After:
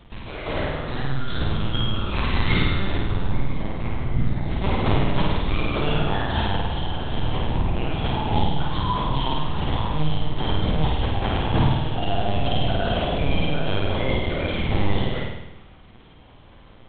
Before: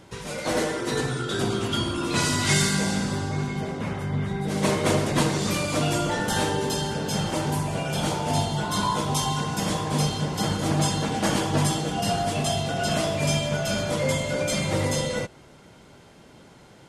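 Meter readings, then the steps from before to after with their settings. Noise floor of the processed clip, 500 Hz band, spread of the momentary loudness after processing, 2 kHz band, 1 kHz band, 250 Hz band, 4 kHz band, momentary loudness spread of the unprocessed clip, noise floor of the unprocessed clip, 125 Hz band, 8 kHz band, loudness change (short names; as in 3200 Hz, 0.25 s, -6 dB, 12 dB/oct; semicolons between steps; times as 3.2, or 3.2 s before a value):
-47 dBFS, -1.5 dB, 6 LU, -1.0 dB, +0.5 dB, -0.5 dB, -1.0 dB, 5 LU, -50 dBFS, +2.5 dB, under -40 dB, 0.0 dB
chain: fifteen-band EQ 100 Hz +9 dB, 400 Hz -11 dB, 1600 Hz -4 dB; LPC vocoder at 8 kHz pitch kept; flutter echo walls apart 8.9 m, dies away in 0.93 s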